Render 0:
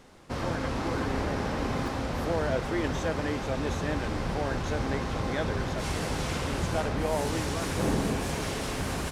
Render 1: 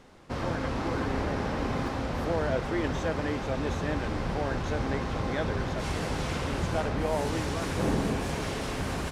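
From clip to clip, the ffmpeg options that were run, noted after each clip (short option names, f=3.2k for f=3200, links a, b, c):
-af "highshelf=f=6.3k:g=-7"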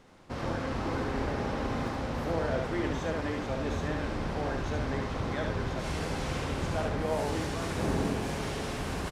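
-af "aecho=1:1:72:0.631,volume=-3.5dB"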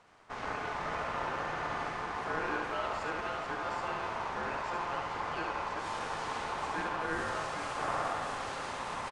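-filter_complex "[0:a]aeval=exprs='val(0)*sin(2*PI*960*n/s)':c=same,aresample=22050,aresample=44100,asplit=2[a][b];[b]adelay=170,highpass=300,lowpass=3.4k,asoftclip=type=hard:threshold=-27.5dB,volume=-7dB[c];[a][c]amix=inputs=2:normalize=0,volume=-2dB"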